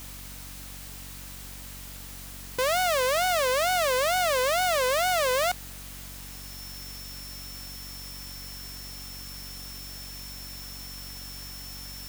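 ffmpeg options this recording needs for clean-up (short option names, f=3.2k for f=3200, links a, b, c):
-af "bandreject=f=46.9:t=h:w=4,bandreject=f=93.8:t=h:w=4,bandreject=f=140.7:t=h:w=4,bandreject=f=187.6:t=h:w=4,bandreject=f=234.5:t=h:w=4,bandreject=f=281.4:t=h:w=4,bandreject=f=5.4k:w=30,afwtdn=0.0063"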